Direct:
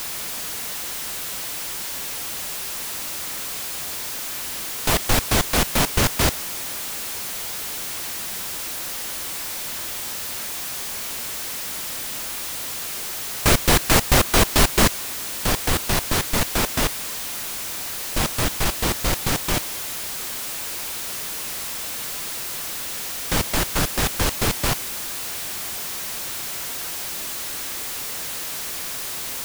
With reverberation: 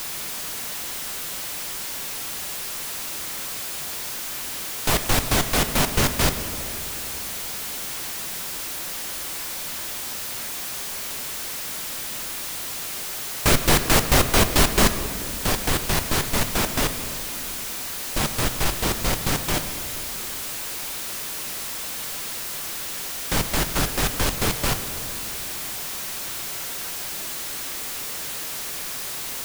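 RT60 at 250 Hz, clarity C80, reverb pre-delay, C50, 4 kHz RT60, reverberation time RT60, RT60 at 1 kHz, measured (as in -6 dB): 3.8 s, 11.5 dB, 5 ms, 10.5 dB, 1.3 s, 2.5 s, 2.1 s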